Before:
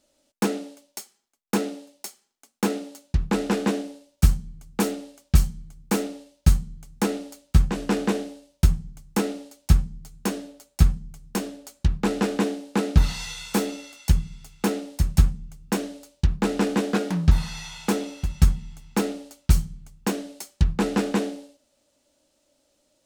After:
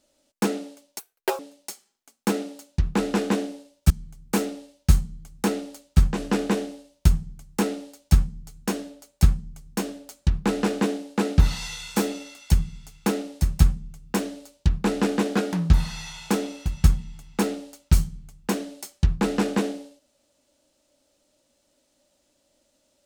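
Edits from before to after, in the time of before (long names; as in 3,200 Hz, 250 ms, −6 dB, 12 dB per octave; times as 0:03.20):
0:00.99–0:01.75: play speed 189%
0:04.26–0:05.48: remove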